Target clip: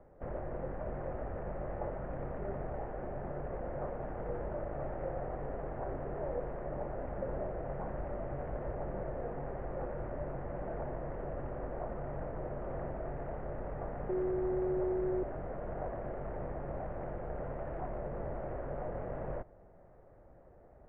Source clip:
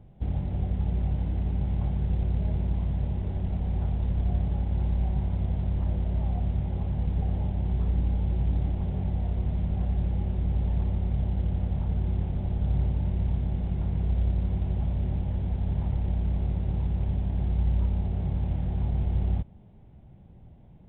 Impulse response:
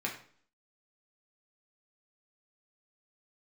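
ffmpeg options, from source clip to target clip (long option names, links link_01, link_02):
-filter_complex "[0:a]equalizer=frequency=125:width_type=o:width=1:gain=-10,equalizer=frequency=500:width_type=o:width=1:gain=-5,equalizer=frequency=1000:width_type=o:width=1:gain=9,asettb=1/sr,asplit=3[link_01][link_02][link_03];[link_01]atrim=end=14.094[link_04];[link_02]atrim=start=14.09:end=15.23,asetpts=PTS-STARTPTS,afade=type=in:duration=0.004:curve=qsin,afade=type=out:start_time=1.136:duration=0.004:curve=qsin,aeval=exprs='val(0)+0.0158*sin(2*PI*600*n/s)':channel_layout=same[link_05];[link_03]atrim=start=15.226[link_06];[link_04][link_05]acrossfade=duration=0.004:curve1=hsin:curve2=qsin[link_07];[link_07][link_06]acrossfade=duration=0.004:curve1=qsin:curve2=hsin,highpass=frequency=220:width_type=q:width=0.5412,highpass=frequency=220:width_type=q:width=1.307,lowpass=frequency=2000:width_type=q:width=0.5176,lowpass=frequency=2000:width_type=q:width=0.7071,lowpass=frequency=2000:width_type=q:width=1.932,afreqshift=-230,volume=5dB"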